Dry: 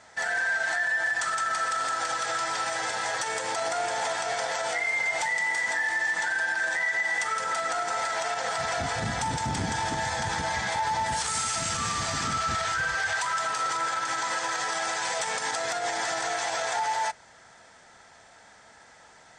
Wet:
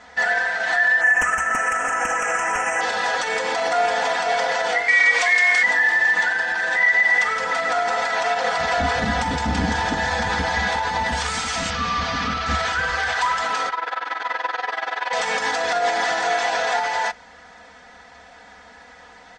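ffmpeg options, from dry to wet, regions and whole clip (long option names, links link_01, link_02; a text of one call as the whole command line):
ffmpeg -i in.wav -filter_complex "[0:a]asettb=1/sr,asplit=3[link_01][link_02][link_03];[link_01]atrim=end=1.014[link_04];[link_02]atrim=start=1.01:end=2.81,asetpts=PTS-STARTPTS,afade=type=in:duration=0.004:curve=qsin,afade=type=out:start_time=1.796:duration=0.004:curve=qsin,aemphasis=mode=production:type=50kf,aeval=exprs='(mod(6.68*val(0)+1,2)-1)/6.68':channel_layout=same,asuperstop=centerf=4100:order=8:qfactor=1.3[link_05];[link_03]atrim=start=2.806[link_06];[link_04][link_05]acrossfade=duration=0.004:curve1=hsin:curve2=qsin[link_07];[link_07][link_06]acrossfade=duration=0.004:curve1=qsin:curve2=hsin,asettb=1/sr,asplit=3[link_08][link_09][link_10];[link_08]atrim=end=4.884[link_11];[link_09]atrim=start=4.88:end=5.63,asetpts=PTS-STARTPTS,afade=type=in:duration=0.004:curve=qsin,afade=type=out:start_time=0.746:duration=0.004:curve=qsin,tiltshelf=frequency=800:gain=-9,aeval=exprs='val(0)*sin(2*PI*180*n/s)':channel_layout=same[link_12];[link_10]atrim=start=5.626[link_13];[link_11][link_12]acrossfade=duration=0.004:curve1=hsin:curve2=qsin[link_14];[link_14][link_13]acrossfade=duration=0.004:curve1=qsin:curve2=hsin,asettb=1/sr,asplit=3[link_15][link_16][link_17];[link_15]atrim=end=11.704[link_18];[link_16]atrim=start=11.7:end=12.46,asetpts=PTS-STARTPTS,afade=type=in:duration=0.004:curve=qsin,afade=type=out:start_time=0.756:duration=0.004:curve=qsin,bandreject=frequency=350:width=5.3,asoftclip=type=hard:threshold=-27dB,lowpass=frequency=5700:width=0.5412,lowpass=frequency=5700:width=1.3066[link_19];[link_17]atrim=start=12.456[link_20];[link_18][link_19]acrossfade=duration=0.004:curve1=hsin:curve2=qsin[link_21];[link_21][link_20]acrossfade=duration=0.004:curve1=qsin:curve2=hsin,asettb=1/sr,asplit=3[link_22][link_23][link_24];[link_22]atrim=end=13.694[link_25];[link_23]atrim=start=13.69:end=15.13,asetpts=PTS-STARTPTS,afade=type=in:duration=0.004:curve=qsin,afade=type=out:start_time=1.436:duration=0.004:curve=qsin,highpass=frequency=120:width=0.5412,highpass=frequency=120:width=1.3066,acrossover=split=350 4000:gain=0.178 1 0.0891[link_26][link_27][link_28];[link_26][link_27][link_28]amix=inputs=3:normalize=0,tremolo=f=21:d=0.889[link_29];[link_24]atrim=start=15.126[link_30];[link_25][link_29]acrossfade=duration=0.004:curve1=hsin:curve2=qsin[link_31];[link_31][link_30]acrossfade=duration=0.004:curve1=qsin:curve2=hsin,lowpass=4200,equalizer=frequency=72:width=6.1:gain=10.5,aecho=1:1:4.1:0.75,volume=6.5dB" out.wav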